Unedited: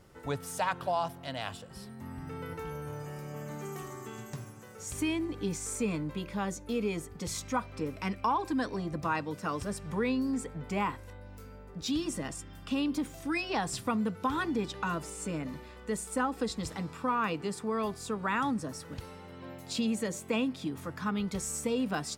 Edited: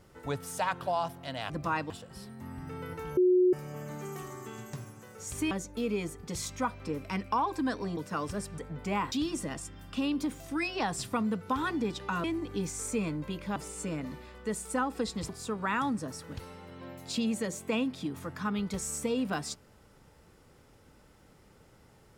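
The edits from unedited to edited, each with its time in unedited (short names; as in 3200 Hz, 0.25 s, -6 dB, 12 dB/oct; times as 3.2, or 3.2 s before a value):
2.77–3.13 bleep 364 Hz -19.5 dBFS
5.11–6.43 move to 14.98
8.89–9.29 move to 1.5
9.9–10.43 cut
10.97–11.86 cut
16.71–17.9 cut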